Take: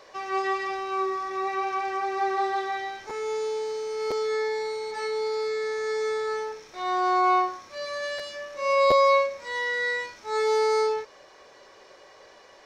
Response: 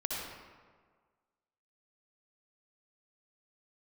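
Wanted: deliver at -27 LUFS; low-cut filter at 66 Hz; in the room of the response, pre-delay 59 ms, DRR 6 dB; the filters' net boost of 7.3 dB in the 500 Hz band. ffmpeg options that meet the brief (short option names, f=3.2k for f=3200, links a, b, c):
-filter_complex "[0:a]highpass=66,equalizer=f=500:t=o:g=8.5,asplit=2[a][b];[1:a]atrim=start_sample=2205,adelay=59[c];[b][c]afir=irnorm=-1:irlink=0,volume=-10.5dB[d];[a][d]amix=inputs=2:normalize=0,volume=-6dB"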